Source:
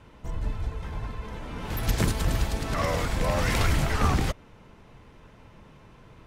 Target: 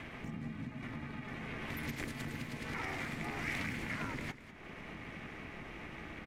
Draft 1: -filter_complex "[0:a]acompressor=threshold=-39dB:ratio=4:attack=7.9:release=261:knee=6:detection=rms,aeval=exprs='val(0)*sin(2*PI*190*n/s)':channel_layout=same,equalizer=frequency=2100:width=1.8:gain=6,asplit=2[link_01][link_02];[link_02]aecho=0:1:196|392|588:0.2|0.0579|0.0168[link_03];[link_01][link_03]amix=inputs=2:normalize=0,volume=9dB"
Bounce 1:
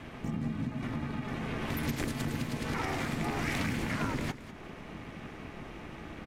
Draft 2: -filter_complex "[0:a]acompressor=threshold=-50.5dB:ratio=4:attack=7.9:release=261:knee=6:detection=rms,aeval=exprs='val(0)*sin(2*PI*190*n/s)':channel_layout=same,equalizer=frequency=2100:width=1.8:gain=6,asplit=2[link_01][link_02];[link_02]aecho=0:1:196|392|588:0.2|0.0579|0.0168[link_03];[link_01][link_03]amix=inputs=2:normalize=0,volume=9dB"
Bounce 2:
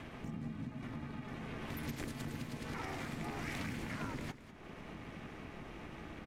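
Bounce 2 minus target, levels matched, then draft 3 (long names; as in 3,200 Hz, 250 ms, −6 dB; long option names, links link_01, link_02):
2,000 Hz band −4.0 dB
-filter_complex "[0:a]acompressor=threshold=-50.5dB:ratio=4:attack=7.9:release=261:knee=6:detection=rms,aeval=exprs='val(0)*sin(2*PI*190*n/s)':channel_layout=same,equalizer=frequency=2100:width=1.8:gain=14,asplit=2[link_01][link_02];[link_02]aecho=0:1:196|392|588:0.2|0.0579|0.0168[link_03];[link_01][link_03]amix=inputs=2:normalize=0,volume=9dB"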